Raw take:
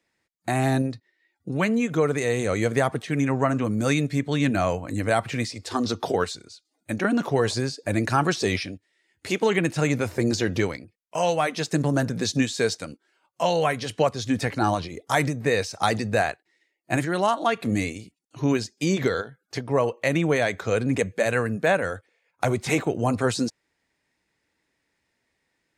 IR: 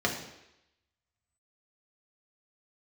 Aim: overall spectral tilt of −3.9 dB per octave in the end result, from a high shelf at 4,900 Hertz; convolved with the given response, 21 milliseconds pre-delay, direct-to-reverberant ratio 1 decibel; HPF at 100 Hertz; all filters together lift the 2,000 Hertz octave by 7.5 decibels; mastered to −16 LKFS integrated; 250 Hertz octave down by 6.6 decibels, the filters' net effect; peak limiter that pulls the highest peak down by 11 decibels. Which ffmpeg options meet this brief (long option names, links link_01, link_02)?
-filter_complex "[0:a]highpass=100,equalizer=frequency=250:width_type=o:gain=-8.5,equalizer=frequency=2000:width_type=o:gain=8,highshelf=frequency=4900:gain=8.5,alimiter=limit=-14.5dB:level=0:latency=1,asplit=2[link_01][link_02];[1:a]atrim=start_sample=2205,adelay=21[link_03];[link_02][link_03]afir=irnorm=-1:irlink=0,volume=-11.5dB[link_04];[link_01][link_04]amix=inputs=2:normalize=0,volume=8dB"